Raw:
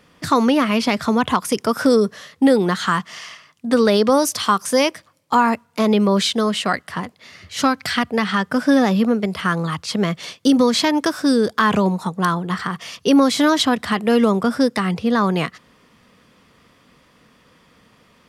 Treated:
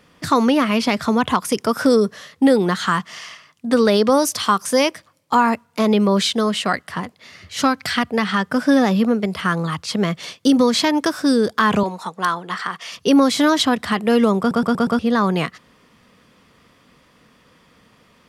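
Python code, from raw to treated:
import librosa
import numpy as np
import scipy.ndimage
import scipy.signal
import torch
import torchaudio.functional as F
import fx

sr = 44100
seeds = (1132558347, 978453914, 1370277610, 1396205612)

y = fx.weighting(x, sr, curve='A', at=(11.83, 12.92))
y = fx.edit(y, sr, fx.stutter_over(start_s=14.39, slice_s=0.12, count=5), tone=tone)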